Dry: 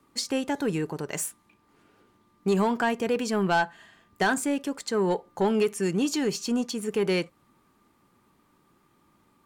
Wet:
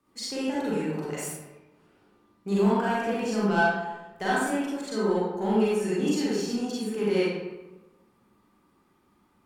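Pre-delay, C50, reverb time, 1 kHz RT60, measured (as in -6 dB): 34 ms, -4.0 dB, 1.1 s, 1.1 s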